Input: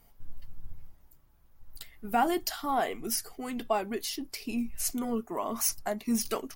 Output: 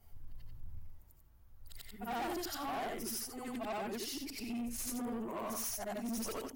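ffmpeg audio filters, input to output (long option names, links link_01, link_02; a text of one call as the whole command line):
ffmpeg -i in.wav -af "afftfilt=real='re':imag='-im':win_size=8192:overlap=0.75,equalizer=frequency=81:width_type=o:width=0.75:gain=10.5,asoftclip=type=tanh:threshold=-36.5dB,volume=1dB" out.wav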